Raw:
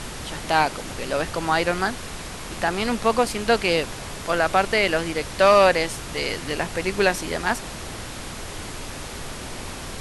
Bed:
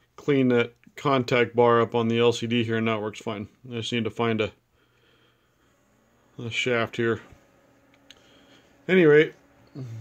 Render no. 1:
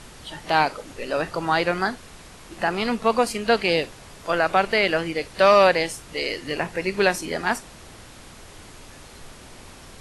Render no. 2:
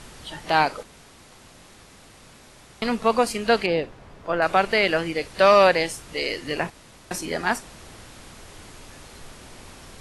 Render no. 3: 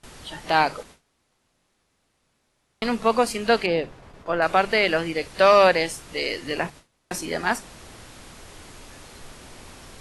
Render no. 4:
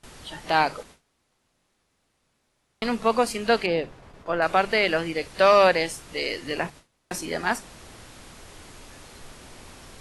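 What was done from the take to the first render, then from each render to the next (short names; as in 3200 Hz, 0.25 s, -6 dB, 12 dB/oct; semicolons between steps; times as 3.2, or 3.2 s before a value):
noise print and reduce 10 dB
0.83–2.82 room tone; 3.66–4.42 LPF 1200 Hz 6 dB/oct; 6.7–7.11 room tone
notches 50/100/150/200 Hz; gate with hold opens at -35 dBFS
gain -1.5 dB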